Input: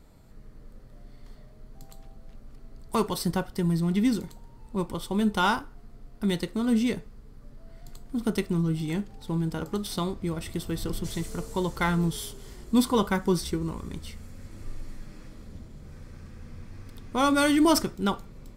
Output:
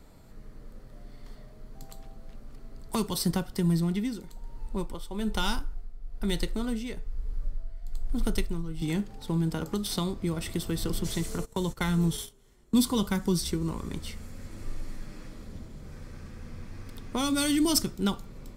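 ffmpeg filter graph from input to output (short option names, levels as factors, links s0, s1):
-filter_complex "[0:a]asettb=1/sr,asplit=3[s0][s1][s2];[s0]atrim=end=3.704[s3];[s1]atrim=start=3.7:end=8.82,asetpts=PTS-STARTPTS,afade=t=in:d=0.004:c=qsin,afade=t=out:st=5.116:d=0.004:c=qsin,bandreject=f=1100:w=16,asubboost=boost=9.5:cutoff=65,tremolo=f=1.1:d=0.7[s4];[s2]atrim=start=8.816[s5];[s3][s4]acrossfade=d=0.004:c1=hsin:c2=qsin[s6];[s6][s5]acrossfade=d=0.004:c1=qsin:c2=hsin,asettb=1/sr,asplit=3[s7][s8][s9];[s7]atrim=end=11.384[s10];[s8]atrim=start=11.38:end=12.75,asetpts=PTS-STARTPTS,afade=t=in:d=0.004:c=qsin,afade=t=out:st=1.366:d=0.004:c=qsin,bandreject=f=4800:w=8.4,agate=range=0.112:threshold=0.0158:ratio=16:release=100:detection=peak[s11];[s9]atrim=start=12.746[s12];[s10][s11]acrossfade=d=0.004:c1=hsin:c2=qsin[s13];[s13][s12]acrossfade=d=0.004:c1=qsin:c2=hsin,acrossover=split=260|3000[s14][s15][s16];[s15]acompressor=threshold=0.0178:ratio=6[s17];[s14][s17][s16]amix=inputs=3:normalize=0,equalizer=f=80:w=0.48:g=-3,volume=1.41"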